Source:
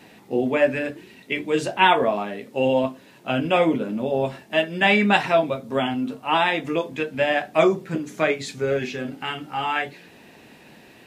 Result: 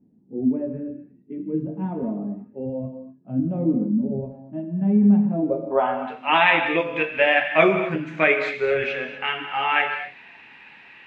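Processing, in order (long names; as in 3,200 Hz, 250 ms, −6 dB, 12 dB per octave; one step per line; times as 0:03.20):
low-pass filter sweep 240 Hz → 2,400 Hz, 0:05.31–0:06.12
reverb whose tail is shaped and stops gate 270 ms flat, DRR 6 dB
noise reduction from a noise print of the clip's start 12 dB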